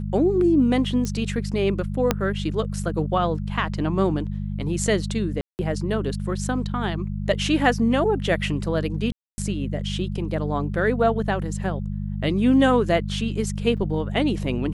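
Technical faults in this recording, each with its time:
hum 50 Hz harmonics 4 -28 dBFS
1.05 s: pop -15 dBFS
2.11 s: pop -4 dBFS
5.41–5.59 s: dropout 179 ms
9.12–9.38 s: dropout 260 ms
13.77–13.78 s: dropout 6.4 ms

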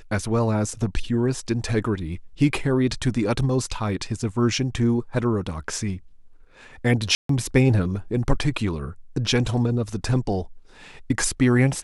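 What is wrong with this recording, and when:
7.15–7.29 s: dropout 143 ms

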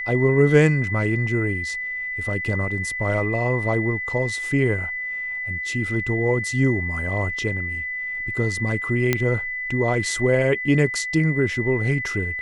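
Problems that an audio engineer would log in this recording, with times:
whine 2 kHz -26 dBFS
9.13 s: pop -5 dBFS

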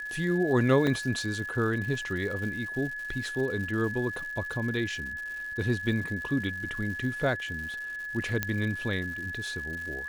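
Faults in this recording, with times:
crackle 240 per s -38 dBFS
whine 1.7 kHz -34 dBFS
0.87 s: dropout 2.5 ms
8.43 s: pop -12 dBFS

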